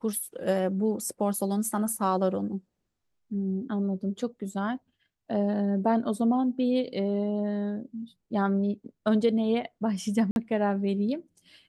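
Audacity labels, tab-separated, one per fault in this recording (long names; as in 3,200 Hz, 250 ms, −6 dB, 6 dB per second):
10.310000	10.360000	drop-out 51 ms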